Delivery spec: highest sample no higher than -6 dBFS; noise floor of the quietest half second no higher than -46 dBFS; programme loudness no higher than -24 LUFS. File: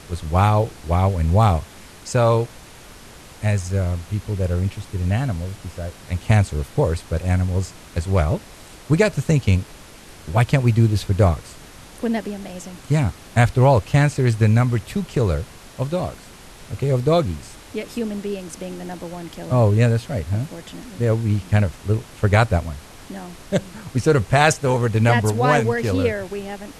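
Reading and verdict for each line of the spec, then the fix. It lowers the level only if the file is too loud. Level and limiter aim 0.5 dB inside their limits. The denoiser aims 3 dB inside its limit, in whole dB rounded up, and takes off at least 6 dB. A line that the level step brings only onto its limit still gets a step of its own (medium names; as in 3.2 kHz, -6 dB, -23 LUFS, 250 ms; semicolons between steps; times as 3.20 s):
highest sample -2.0 dBFS: fail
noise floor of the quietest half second -42 dBFS: fail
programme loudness -20.5 LUFS: fail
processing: noise reduction 6 dB, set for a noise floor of -42 dBFS; trim -4 dB; peak limiter -6.5 dBFS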